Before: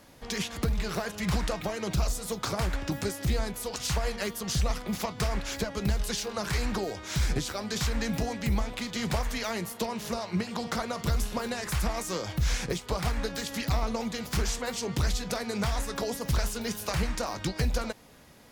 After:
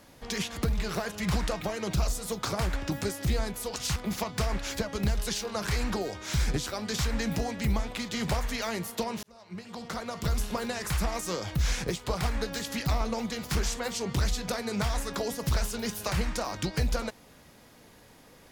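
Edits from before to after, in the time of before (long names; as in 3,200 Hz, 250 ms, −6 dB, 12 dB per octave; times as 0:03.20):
0:03.96–0:04.78: remove
0:10.05–0:11.26: fade in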